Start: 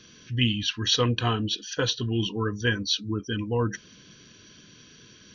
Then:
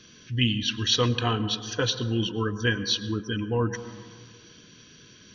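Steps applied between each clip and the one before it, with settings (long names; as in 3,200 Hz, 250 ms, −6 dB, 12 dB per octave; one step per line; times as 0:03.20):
dense smooth reverb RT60 1.9 s, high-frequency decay 0.25×, pre-delay 90 ms, DRR 13 dB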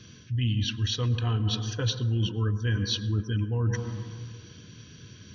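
parametric band 97 Hz +15 dB 1.5 octaves
reversed playback
downward compressor 6 to 1, threshold −23 dBFS, peak gain reduction 12 dB
reversed playback
level −1 dB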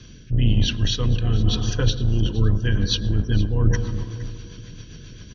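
sub-octave generator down 2 octaves, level +1 dB
rotating-speaker cabinet horn 1 Hz, later 7.5 Hz, at 0:01.70
repeating echo 466 ms, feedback 30%, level −17.5 dB
level +6.5 dB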